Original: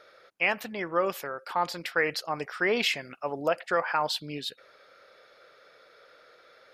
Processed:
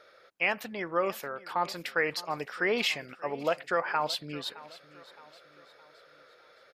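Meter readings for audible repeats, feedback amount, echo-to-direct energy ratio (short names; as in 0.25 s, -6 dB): 3, 46%, -18.0 dB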